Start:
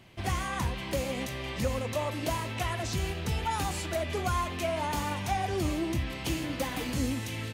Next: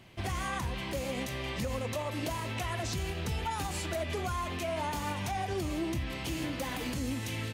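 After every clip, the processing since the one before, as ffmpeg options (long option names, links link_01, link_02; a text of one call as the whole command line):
ffmpeg -i in.wav -af "alimiter=level_in=1dB:limit=-24dB:level=0:latency=1:release=98,volume=-1dB" out.wav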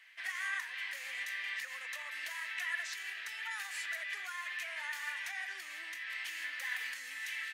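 ffmpeg -i in.wav -af "highpass=frequency=1800:width_type=q:width=6,volume=-6.5dB" out.wav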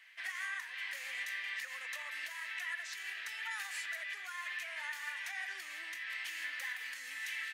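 ffmpeg -i in.wav -af "alimiter=level_in=6dB:limit=-24dB:level=0:latency=1:release=369,volume=-6dB" out.wav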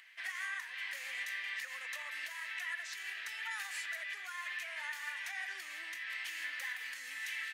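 ffmpeg -i in.wav -af "acompressor=mode=upward:threshold=-59dB:ratio=2.5" out.wav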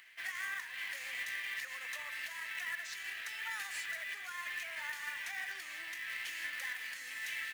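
ffmpeg -i in.wav -af "acrusher=bits=3:mode=log:mix=0:aa=0.000001" out.wav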